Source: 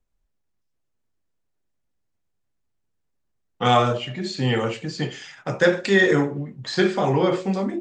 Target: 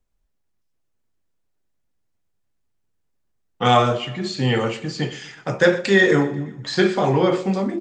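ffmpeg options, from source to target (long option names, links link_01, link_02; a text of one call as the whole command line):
ffmpeg -i in.wav -af "aecho=1:1:122|244|366|488:0.106|0.0551|0.0286|0.0149,volume=2dB" out.wav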